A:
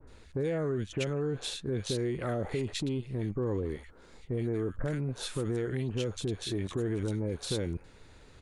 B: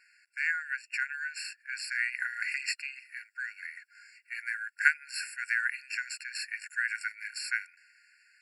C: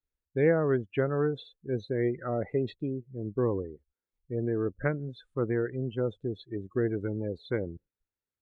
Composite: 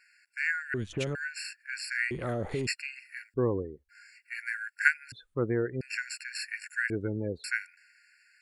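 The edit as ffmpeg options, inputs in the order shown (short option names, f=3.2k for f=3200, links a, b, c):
-filter_complex "[0:a]asplit=2[a][b];[2:a]asplit=3[c][d][e];[1:a]asplit=6[f][g][h][i][j][k];[f]atrim=end=0.742[l];[a]atrim=start=0.738:end=1.152[m];[g]atrim=start=1.148:end=2.112[n];[b]atrim=start=2.108:end=2.672[o];[h]atrim=start=2.668:end=3.342[p];[c]atrim=start=3.338:end=3.892[q];[i]atrim=start=3.888:end=5.122[r];[d]atrim=start=5.118:end=5.812[s];[j]atrim=start=5.808:end=6.902[t];[e]atrim=start=6.898:end=7.442[u];[k]atrim=start=7.438[v];[l][m]acrossfade=d=0.004:c1=hsin:c2=hsin[w];[w][n]acrossfade=d=0.004:c1=hsin:c2=hsin[x];[x][o]acrossfade=d=0.004:c1=hsin:c2=hsin[y];[y][p]acrossfade=d=0.004:c1=hsin:c2=hsin[z];[z][q]acrossfade=d=0.004:c1=hsin:c2=hsin[aa];[aa][r]acrossfade=d=0.004:c1=hsin:c2=hsin[ab];[ab][s]acrossfade=d=0.004:c1=hsin:c2=hsin[ac];[ac][t]acrossfade=d=0.004:c1=hsin:c2=hsin[ad];[ad][u]acrossfade=d=0.004:c1=hsin:c2=hsin[ae];[ae][v]acrossfade=d=0.004:c1=hsin:c2=hsin"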